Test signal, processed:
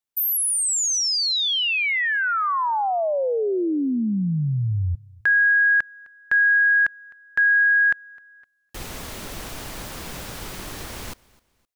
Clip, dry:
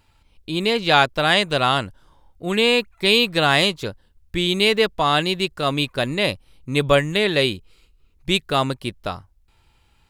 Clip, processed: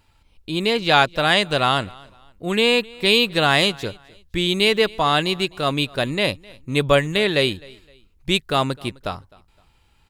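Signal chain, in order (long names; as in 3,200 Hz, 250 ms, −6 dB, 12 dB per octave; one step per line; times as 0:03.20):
repeating echo 258 ms, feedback 32%, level −24 dB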